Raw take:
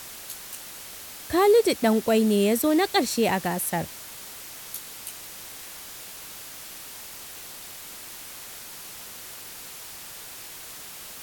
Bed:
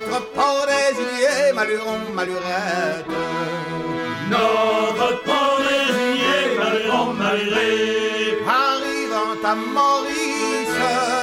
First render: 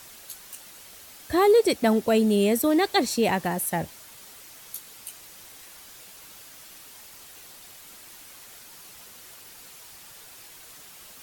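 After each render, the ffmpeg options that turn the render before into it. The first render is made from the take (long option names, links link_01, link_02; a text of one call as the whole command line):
ffmpeg -i in.wav -af "afftdn=noise_reduction=7:noise_floor=-41" out.wav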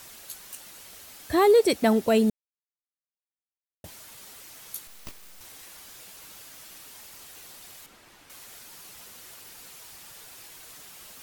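ffmpeg -i in.wav -filter_complex "[0:a]asettb=1/sr,asplit=3[link_01][link_02][link_03];[link_01]atrim=end=4.874[link_04];[link_02]atrim=start=4.87:end=5.41,asetpts=PTS-STARTPTS,afade=type=in:duration=0.004:curve=qsin,afade=type=out:start_time=0.536:duration=0.004:curve=qsin,aeval=exprs='abs(val(0))':channel_layout=same[link_05];[link_03]atrim=start=5.406[link_06];[link_04][link_05]acrossfade=duration=0.004:curve1=hsin:curve2=qsin[link_07];[link_07][link_06]acrossfade=duration=0.004:curve1=qsin:curve2=hsin,asettb=1/sr,asplit=3[link_08][link_09][link_10];[link_08]atrim=end=7.864[link_11];[link_09]atrim=start=7.86:end=8.3,asetpts=PTS-STARTPTS,afade=type=in:duration=0.004:curve=qsin,afade=type=out:start_time=0.436:duration=0.004:curve=qsin,lowpass=frequency=2100:poles=1[link_12];[link_10]atrim=start=8.296[link_13];[link_11][link_12]acrossfade=duration=0.004:curve1=hsin:curve2=qsin[link_14];[link_14][link_13]acrossfade=duration=0.004:curve1=qsin:curve2=hsin,asplit=3[link_15][link_16][link_17];[link_15]atrim=end=2.3,asetpts=PTS-STARTPTS,afade=type=out:start_time=2.296:duration=0.004:curve=hsin[link_18];[link_16]atrim=start=2.3:end=3.84,asetpts=PTS-STARTPTS,volume=0[link_19];[link_17]atrim=start=3.84,asetpts=PTS-STARTPTS,afade=type=in:duration=0.004:curve=hsin[link_20];[link_18][link_19][link_20]concat=n=3:v=0:a=1" out.wav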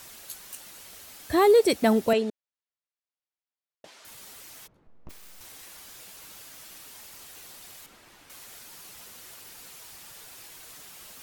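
ffmpeg -i in.wav -filter_complex "[0:a]asettb=1/sr,asplit=3[link_01][link_02][link_03];[link_01]atrim=end=2.134[link_04];[link_02]atrim=start=2.13:end=4.05,asetpts=PTS-STARTPTS,afade=type=in:duration=0.004:curve=qsin,afade=type=out:start_time=1.916:duration=0.004:curve=qsin,highpass=370,lowpass=5100[link_05];[link_03]atrim=start=4.046[link_06];[link_04][link_05]acrossfade=duration=0.004:curve1=hsin:curve2=qsin[link_07];[link_07][link_06]acrossfade=duration=0.004:curve1=qsin:curve2=hsin,asplit=3[link_08][link_09][link_10];[link_08]afade=type=out:start_time=4.66:duration=0.02[link_11];[link_09]adynamicsmooth=sensitivity=2:basefreq=530,afade=type=in:start_time=4.66:duration=0.02,afade=type=out:start_time=5.09:duration=0.02[link_12];[link_10]afade=type=in:start_time=5.09:duration=0.02[link_13];[link_11][link_12][link_13]amix=inputs=3:normalize=0" out.wav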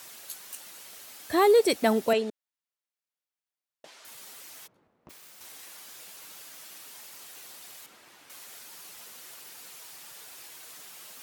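ffmpeg -i in.wav -af "highpass=96,lowshelf=frequency=210:gain=-9" out.wav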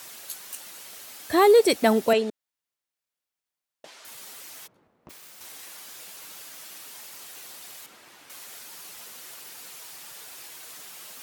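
ffmpeg -i in.wav -af "volume=3.5dB" out.wav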